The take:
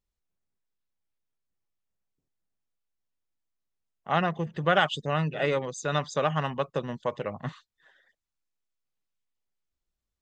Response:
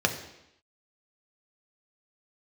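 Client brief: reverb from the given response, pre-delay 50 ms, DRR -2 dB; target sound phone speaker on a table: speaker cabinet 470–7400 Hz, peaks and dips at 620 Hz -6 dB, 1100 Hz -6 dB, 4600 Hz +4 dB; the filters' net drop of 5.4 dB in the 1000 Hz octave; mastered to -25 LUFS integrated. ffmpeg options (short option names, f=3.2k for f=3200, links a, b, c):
-filter_complex "[0:a]equalizer=f=1k:t=o:g=-3.5,asplit=2[a][b];[1:a]atrim=start_sample=2205,adelay=50[c];[b][c]afir=irnorm=-1:irlink=0,volume=-10dB[d];[a][d]amix=inputs=2:normalize=0,highpass=f=470:w=0.5412,highpass=f=470:w=1.3066,equalizer=f=620:t=q:w=4:g=-6,equalizer=f=1.1k:t=q:w=4:g=-6,equalizer=f=4.6k:t=q:w=4:g=4,lowpass=f=7.4k:w=0.5412,lowpass=f=7.4k:w=1.3066,volume=4dB"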